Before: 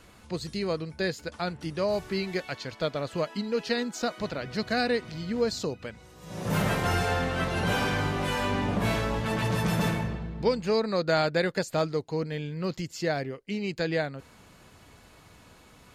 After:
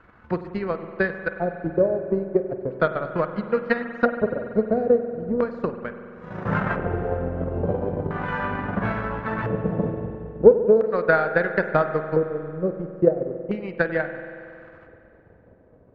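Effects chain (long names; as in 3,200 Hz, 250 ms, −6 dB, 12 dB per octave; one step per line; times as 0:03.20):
auto-filter low-pass square 0.37 Hz 520–1,500 Hz
transient designer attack +11 dB, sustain −11 dB
spring reverb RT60 2.6 s, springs 46 ms, chirp 75 ms, DRR 8 dB
level −2 dB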